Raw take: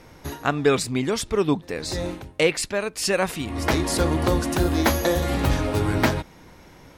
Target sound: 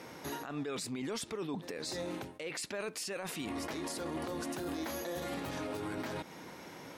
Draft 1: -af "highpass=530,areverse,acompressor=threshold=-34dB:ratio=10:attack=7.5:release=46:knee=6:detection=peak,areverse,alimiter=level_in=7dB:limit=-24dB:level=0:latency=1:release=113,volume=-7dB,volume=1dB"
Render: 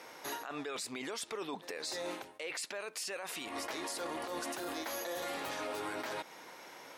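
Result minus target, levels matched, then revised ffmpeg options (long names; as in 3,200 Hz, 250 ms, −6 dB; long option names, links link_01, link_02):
250 Hz band −5.5 dB
-af "highpass=190,areverse,acompressor=threshold=-34dB:ratio=10:attack=7.5:release=46:knee=6:detection=peak,areverse,alimiter=level_in=7dB:limit=-24dB:level=0:latency=1:release=113,volume=-7dB,volume=1dB"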